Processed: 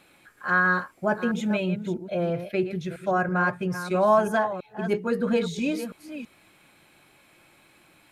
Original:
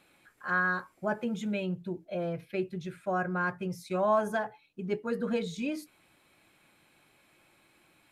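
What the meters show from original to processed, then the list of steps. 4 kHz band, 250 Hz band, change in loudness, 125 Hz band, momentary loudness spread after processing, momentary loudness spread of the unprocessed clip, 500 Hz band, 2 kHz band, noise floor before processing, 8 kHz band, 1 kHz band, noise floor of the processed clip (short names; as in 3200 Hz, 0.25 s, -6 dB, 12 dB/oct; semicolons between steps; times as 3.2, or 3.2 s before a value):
+7.0 dB, +7.0 dB, +7.0 dB, +7.0 dB, 11 LU, 10 LU, +7.0 dB, +7.0 dB, -66 dBFS, +7.0 dB, +7.0 dB, -59 dBFS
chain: reverse delay 0.329 s, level -10.5 dB; gain +6.5 dB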